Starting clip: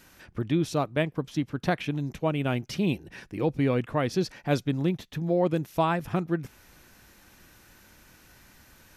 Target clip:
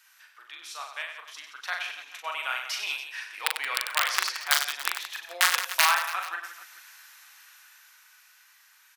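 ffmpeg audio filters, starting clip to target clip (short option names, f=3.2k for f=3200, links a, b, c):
-filter_complex "[0:a]dynaudnorm=f=300:g=13:m=12dB,asplit=2[a][b];[b]aecho=0:1:125:0.188[c];[a][c]amix=inputs=2:normalize=0,aeval=exprs='(mod(1.88*val(0)+1,2)-1)/1.88':c=same,highpass=f=1.1k:w=0.5412,highpass=f=1.1k:w=1.3066,asplit=2[d][e];[e]aecho=0:1:40|96|174.4|284.2|437.8:0.631|0.398|0.251|0.158|0.1[f];[d][f]amix=inputs=2:normalize=0,volume=-3.5dB"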